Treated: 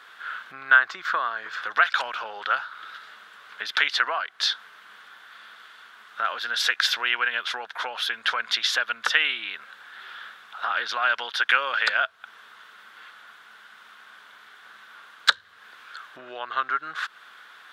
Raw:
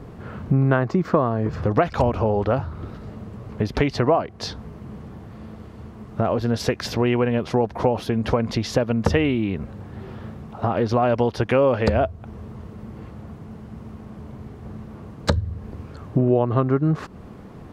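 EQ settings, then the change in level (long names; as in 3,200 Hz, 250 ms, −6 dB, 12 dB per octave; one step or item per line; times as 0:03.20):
high-pass with resonance 1,500 Hz, resonance Q 5.6
parametric band 3,500 Hz +14.5 dB 0.55 octaves
high-shelf EQ 7,200 Hz +6 dB
−2.0 dB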